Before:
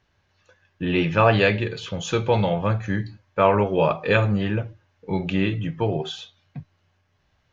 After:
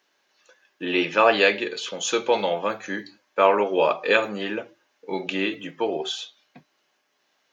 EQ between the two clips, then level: high-pass 270 Hz 24 dB/octave; treble shelf 4.5 kHz +10.5 dB; 0.0 dB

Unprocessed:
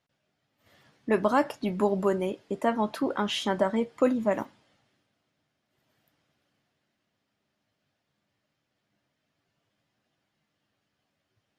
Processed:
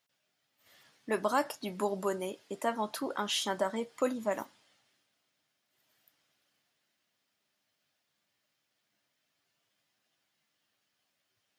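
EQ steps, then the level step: dynamic bell 2.4 kHz, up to -5 dB, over -47 dBFS, Q 1.3; tilt EQ +3 dB/octave; -3.5 dB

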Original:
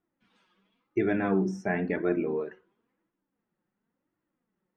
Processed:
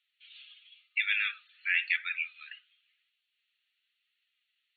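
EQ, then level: brick-wall FIR band-pass 1.2–4.5 kHz; resonant high shelf 2 kHz +12.5 dB, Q 3; +3.0 dB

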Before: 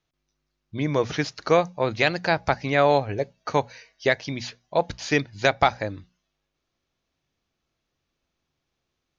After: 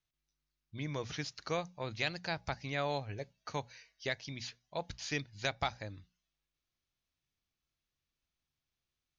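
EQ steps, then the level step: peaking EQ 450 Hz -10 dB 3 oct; dynamic bell 1.7 kHz, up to -4 dB, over -38 dBFS, Q 0.92; -7.5 dB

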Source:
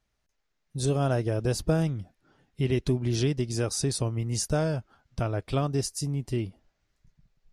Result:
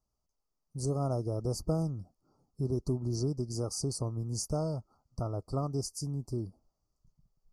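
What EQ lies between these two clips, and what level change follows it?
Chebyshev band-stop 1.3–4.5 kHz, order 5; -5.5 dB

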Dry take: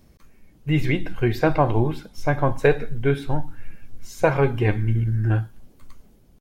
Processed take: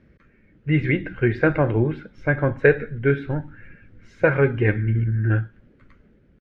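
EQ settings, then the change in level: high-pass 66 Hz 6 dB/octave; resonant low-pass 1.8 kHz, resonance Q 1.6; high-order bell 880 Hz -10.5 dB 1 oct; +1.5 dB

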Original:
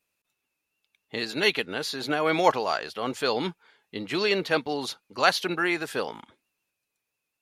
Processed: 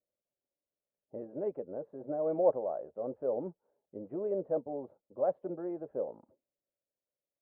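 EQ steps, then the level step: four-pole ladder low-pass 620 Hz, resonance 70%; distance through air 240 m; band-stop 450 Hz, Q 12; 0.0 dB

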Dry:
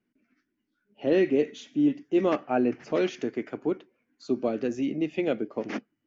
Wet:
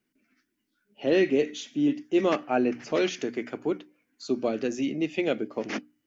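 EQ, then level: treble shelf 2.6 kHz +9.5 dB; hum notches 60/120/180/240/300 Hz; 0.0 dB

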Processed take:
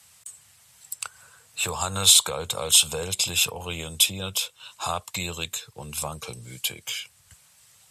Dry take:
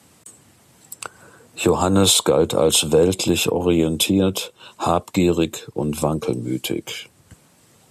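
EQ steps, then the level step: amplifier tone stack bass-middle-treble 10-0-10; +2.0 dB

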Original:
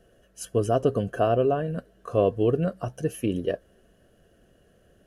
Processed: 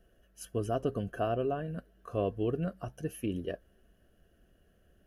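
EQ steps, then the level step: graphic EQ 125/250/500/1000/2000/4000/8000 Hz -8/-4/-9/-6/-4/-6/-11 dB; 0.0 dB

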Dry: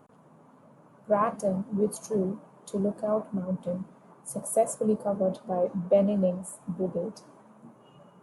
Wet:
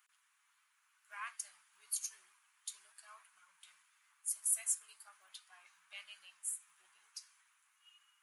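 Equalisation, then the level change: inverse Chebyshev high-pass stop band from 560 Hz, stop band 60 dB; +2.0 dB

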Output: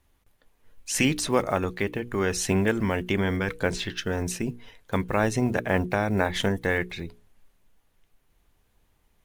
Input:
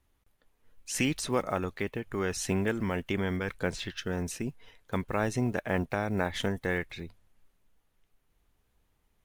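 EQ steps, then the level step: hum notches 60/120/180/240/300/360/420/480 Hz; band-stop 1.3 kHz, Q 24; +6.0 dB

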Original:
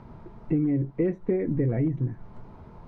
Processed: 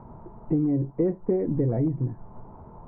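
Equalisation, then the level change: resonant low-pass 930 Hz, resonance Q 1.7; 0.0 dB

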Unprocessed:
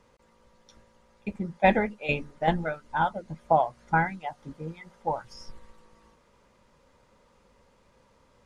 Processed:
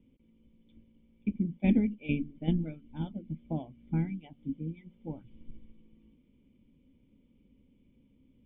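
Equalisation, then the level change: cascade formant filter i; bass shelf 430 Hz +12 dB; treble shelf 3.4 kHz +11 dB; 0.0 dB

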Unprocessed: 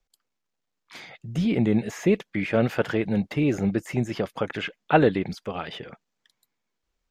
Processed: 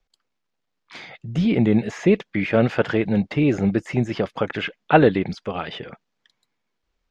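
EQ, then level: low-pass 5.2 kHz 12 dB/octave; +4.0 dB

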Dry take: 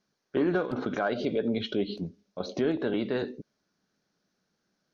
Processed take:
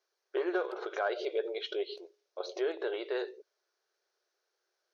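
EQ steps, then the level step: brick-wall FIR high-pass 340 Hz; -3.0 dB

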